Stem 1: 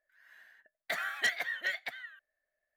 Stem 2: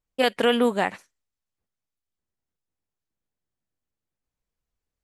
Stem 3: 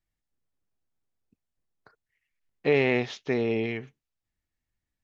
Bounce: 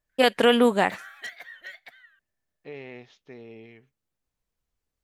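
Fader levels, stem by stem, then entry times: -8.0, +2.0, -18.0 dB; 0.00, 0.00, 0.00 s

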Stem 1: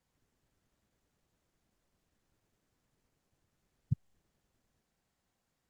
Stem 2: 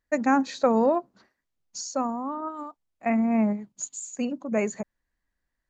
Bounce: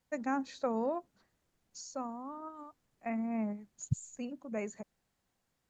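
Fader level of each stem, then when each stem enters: +0.5, -12.0 dB; 0.00, 0.00 s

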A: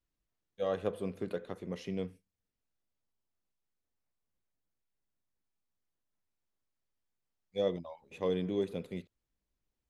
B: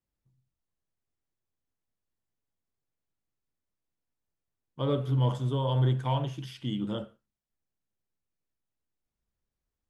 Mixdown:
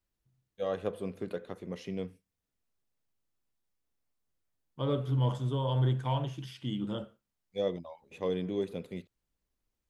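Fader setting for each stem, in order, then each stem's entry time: 0.0, -2.5 dB; 0.00, 0.00 s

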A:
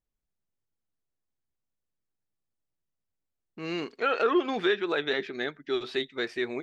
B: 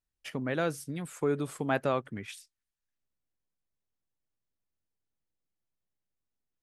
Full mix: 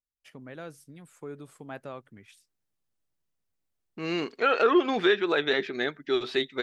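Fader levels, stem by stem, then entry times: +3.0, -11.5 dB; 0.40, 0.00 s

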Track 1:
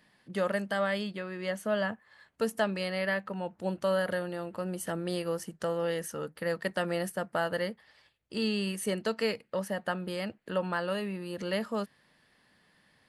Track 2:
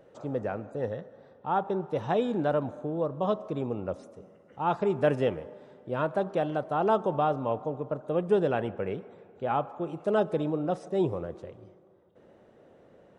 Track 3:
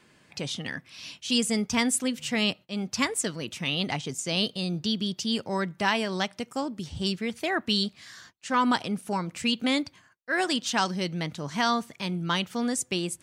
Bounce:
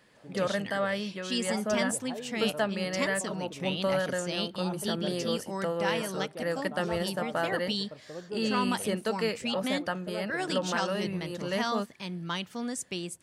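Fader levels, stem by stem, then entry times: 0.0, -14.0, -6.5 dB; 0.00, 0.00, 0.00 s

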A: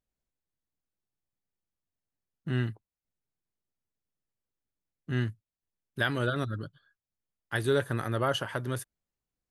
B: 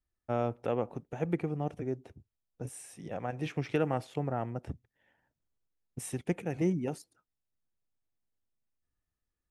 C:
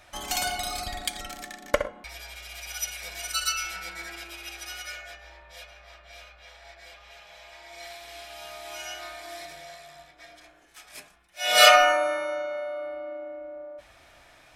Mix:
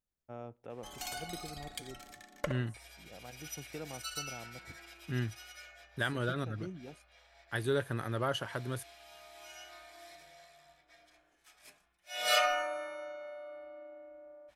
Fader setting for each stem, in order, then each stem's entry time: -5.0, -14.5, -13.0 dB; 0.00, 0.00, 0.70 s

